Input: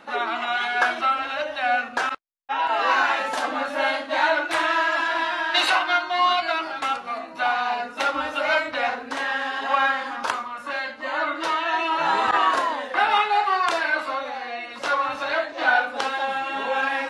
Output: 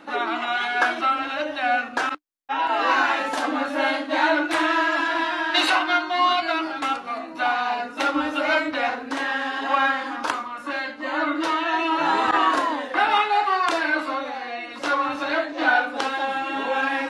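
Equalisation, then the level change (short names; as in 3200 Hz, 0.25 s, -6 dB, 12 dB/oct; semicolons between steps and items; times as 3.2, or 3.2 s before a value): bell 300 Hz +13 dB 0.3 oct; 0.0 dB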